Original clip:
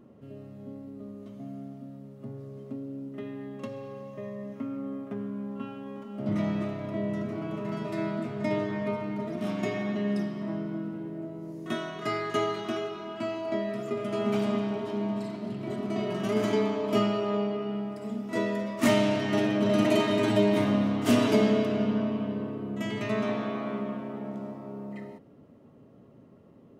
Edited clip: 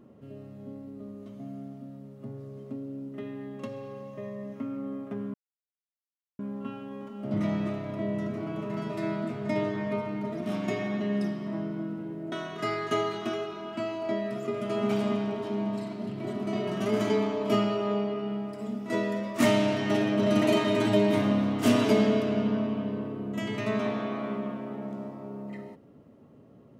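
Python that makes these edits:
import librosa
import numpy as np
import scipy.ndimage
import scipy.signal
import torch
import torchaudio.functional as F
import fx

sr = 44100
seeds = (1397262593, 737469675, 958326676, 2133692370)

y = fx.edit(x, sr, fx.insert_silence(at_s=5.34, length_s=1.05),
    fx.cut(start_s=11.27, length_s=0.48), tone=tone)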